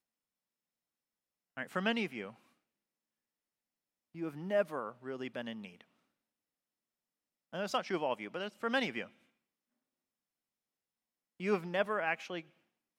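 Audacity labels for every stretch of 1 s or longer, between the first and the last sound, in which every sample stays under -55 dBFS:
2.360000	4.140000	silence
5.810000	7.530000	silence
9.100000	11.400000	silence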